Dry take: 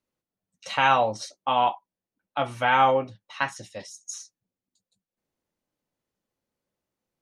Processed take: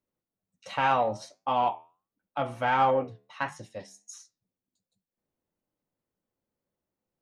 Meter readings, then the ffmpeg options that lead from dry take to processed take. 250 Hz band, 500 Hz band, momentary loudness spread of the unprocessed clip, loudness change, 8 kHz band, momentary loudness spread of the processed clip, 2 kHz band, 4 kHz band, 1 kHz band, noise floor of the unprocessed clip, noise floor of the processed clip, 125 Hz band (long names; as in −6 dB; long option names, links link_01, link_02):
−1.5 dB, −2.5 dB, 19 LU, −4.0 dB, −9.0 dB, 20 LU, −6.5 dB, −9.0 dB, −3.5 dB, below −85 dBFS, below −85 dBFS, −2.0 dB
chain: -filter_complex "[0:a]flanger=delay=9.5:depth=3.6:regen=-81:speed=1.4:shape=triangular,equalizer=frequency=5500:width=0.3:gain=-8.5,asplit=2[link_01][link_02];[link_02]asoftclip=type=tanh:threshold=-24dB,volume=-5.5dB[link_03];[link_01][link_03]amix=inputs=2:normalize=0"